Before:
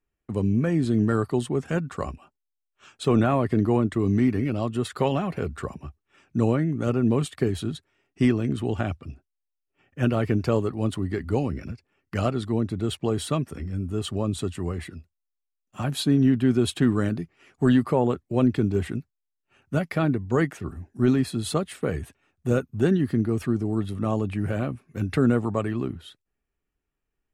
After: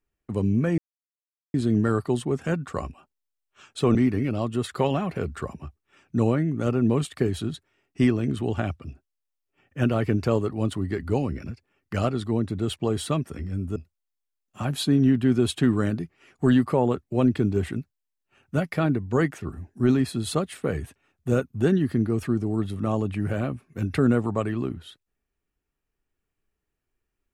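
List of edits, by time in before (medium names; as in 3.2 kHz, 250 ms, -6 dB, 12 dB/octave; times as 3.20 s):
0.78 s: insert silence 0.76 s
3.19–4.16 s: delete
13.97–14.95 s: delete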